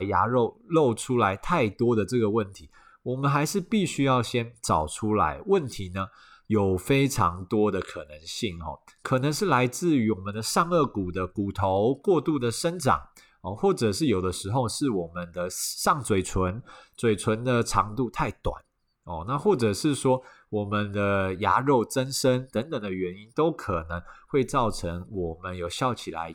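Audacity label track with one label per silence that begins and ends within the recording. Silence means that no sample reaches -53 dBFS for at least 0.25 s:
18.610000	19.060000	silence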